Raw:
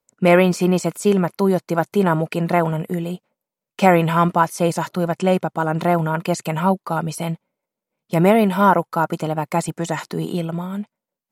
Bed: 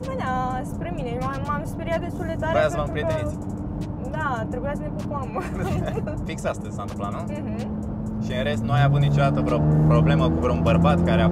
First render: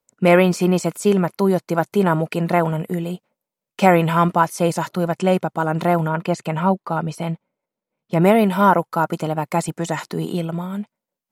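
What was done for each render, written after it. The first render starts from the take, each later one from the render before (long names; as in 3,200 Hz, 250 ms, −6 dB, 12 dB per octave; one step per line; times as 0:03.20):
0:06.08–0:08.22: low-pass filter 3,200 Hz 6 dB per octave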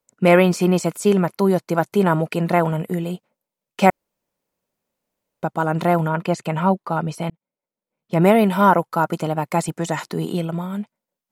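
0:03.90–0:05.43: fill with room tone
0:07.30–0:08.21: fade in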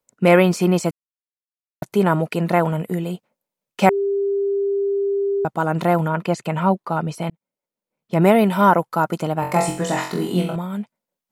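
0:00.91–0:01.82: silence
0:03.89–0:05.45: beep over 398 Hz −17.5 dBFS
0:09.40–0:10.56: flutter between parallel walls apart 3.8 metres, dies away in 0.46 s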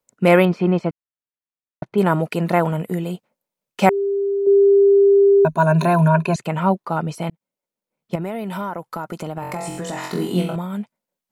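0:00.45–0:01.98: high-frequency loss of the air 340 metres
0:04.46–0:06.36: EQ curve with evenly spaced ripples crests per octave 1.5, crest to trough 17 dB
0:08.15–0:10.04: downward compressor, threshold −24 dBFS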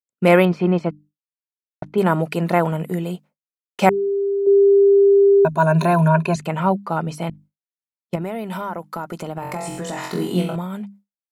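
mains-hum notches 50/100/150/200/250/300 Hz
downward expander −41 dBFS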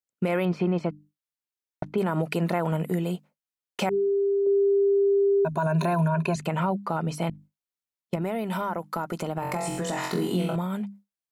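brickwall limiter −13.5 dBFS, peak gain reduction 11 dB
downward compressor 1.5 to 1, threshold −27 dBFS, peak gain reduction 4 dB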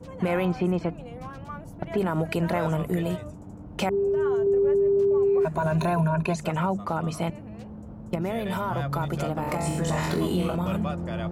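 mix in bed −12 dB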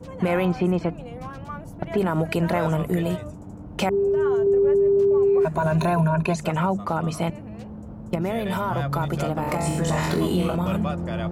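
level +3 dB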